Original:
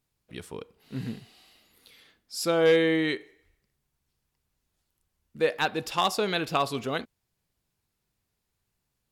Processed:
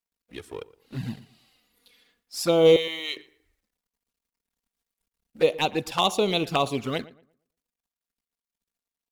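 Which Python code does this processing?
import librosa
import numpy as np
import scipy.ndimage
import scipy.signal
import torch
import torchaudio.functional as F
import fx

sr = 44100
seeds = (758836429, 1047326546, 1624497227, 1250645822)

y = fx.law_mismatch(x, sr, coded='A')
y = fx.env_flanger(y, sr, rest_ms=4.3, full_db=-24.5)
y = fx.highpass(y, sr, hz=1200.0, slope=12, at=(2.76, 3.17))
y = fx.echo_filtered(y, sr, ms=116, feedback_pct=29, hz=2200.0, wet_db=-19.0)
y = F.gain(torch.from_numpy(y), 6.0).numpy()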